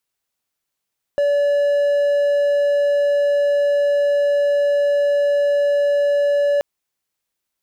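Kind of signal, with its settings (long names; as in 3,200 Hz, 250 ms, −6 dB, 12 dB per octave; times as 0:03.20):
tone triangle 574 Hz −12 dBFS 5.43 s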